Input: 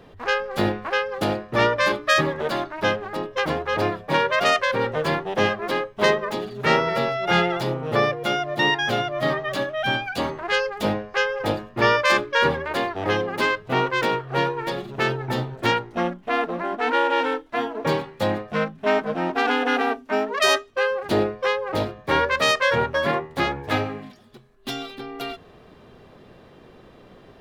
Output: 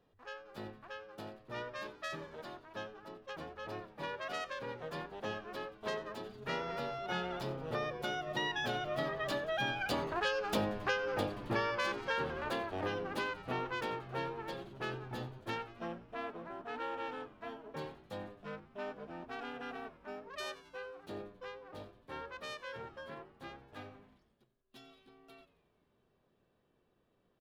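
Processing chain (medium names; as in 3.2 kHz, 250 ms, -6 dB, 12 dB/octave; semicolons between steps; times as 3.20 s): Doppler pass-by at 10.67 s, 9 m/s, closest 3.7 m; band-stop 2.1 kHz, Q 13; frequency-shifting echo 90 ms, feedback 65%, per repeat -110 Hz, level -17.5 dB; compression 4:1, threshold -37 dBFS, peak gain reduction 15.5 dB; trim +4 dB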